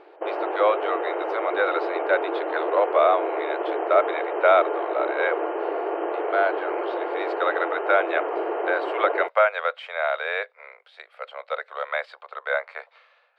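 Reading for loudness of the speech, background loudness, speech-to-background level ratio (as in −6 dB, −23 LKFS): −25.0 LKFS, −27.5 LKFS, 2.5 dB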